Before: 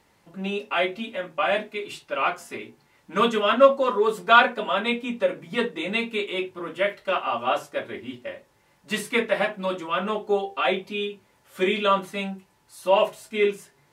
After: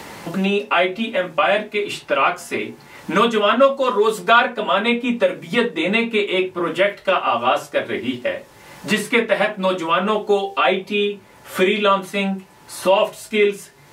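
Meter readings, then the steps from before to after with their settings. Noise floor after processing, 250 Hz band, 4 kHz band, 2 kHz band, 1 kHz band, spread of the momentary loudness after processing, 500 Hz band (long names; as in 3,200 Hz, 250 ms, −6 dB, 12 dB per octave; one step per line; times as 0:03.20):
−47 dBFS, +8.0 dB, +6.0 dB, +5.5 dB, +5.0 dB, 10 LU, +5.5 dB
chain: multiband upward and downward compressor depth 70%
level +6 dB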